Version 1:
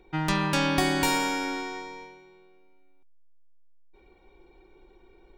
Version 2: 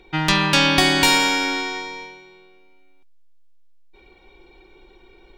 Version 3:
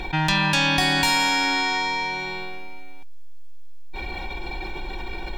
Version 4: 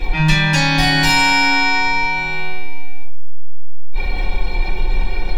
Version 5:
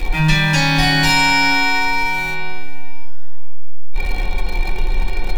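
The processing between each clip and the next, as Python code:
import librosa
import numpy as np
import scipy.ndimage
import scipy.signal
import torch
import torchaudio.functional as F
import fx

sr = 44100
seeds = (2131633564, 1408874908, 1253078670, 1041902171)

y1 = fx.peak_eq(x, sr, hz=3500.0, db=9.0, octaves=1.9)
y1 = F.gain(torch.from_numpy(y1), 5.0).numpy()
y2 = y1 + 0.61 * np.pad(y1, (int(1.2 * sr / 1000.0), 0))[:len(y1)]
y2 = fx.env_flatten(y2, sr, amount_pct=70)
y2 = F.gain(torch.from_numpy(y2), -7.5).numpy()
y3 = fx.room_shoebox(y2, sr, seeds[0], volume_m3=33.0, walls='mixed', distance_m=1.8)
y3 = F.gain(torch.from_numpy(y3), -5.0).numpy()
y4 = y3 + 0.5 * 10.0 ** (-28.0 / 20.0) * np.sign(y3)
y4 = fx.echo_feedback(y4, sr, ms=483, feedback_pct=37, wet_db=-21.0)
y4 = F.gain(torch.from_numpy(y4), -1.0).numpy()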